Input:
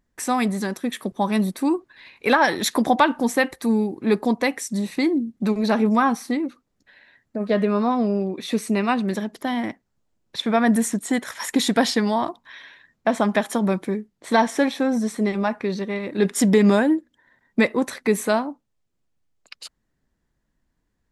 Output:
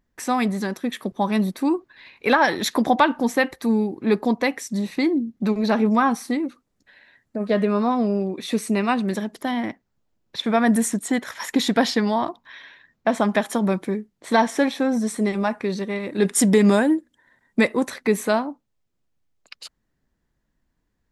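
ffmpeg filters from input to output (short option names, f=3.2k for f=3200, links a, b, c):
-af "asetnsamples=n=441:p=0,asendcmd='6.11 equalizer g 2;9.51 equalizer g -7;10.44 equalizer g 2;11.08 equalizer g -7.5;13.08 equalizer g -0.5;15.07 equalizer g 7;17.88 equalizer g -3',equalizer=f=9.1k:t=o:w=0.73:g=-6.5"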